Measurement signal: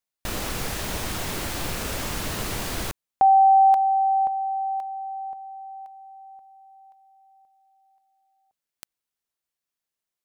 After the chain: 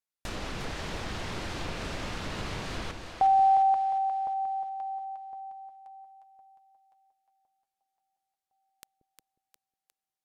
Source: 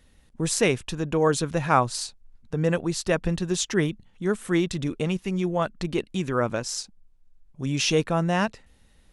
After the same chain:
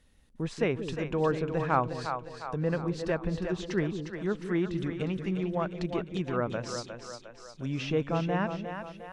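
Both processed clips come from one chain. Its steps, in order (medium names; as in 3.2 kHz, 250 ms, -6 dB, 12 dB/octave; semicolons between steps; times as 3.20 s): low-pass that closes with the level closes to 2.1 kHz, closed at -21 dBFS; on a send: two-band feedback delay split 440 Hz, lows 181 ms, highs 356 ms, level -7 dB; on the sum: trim -6 dB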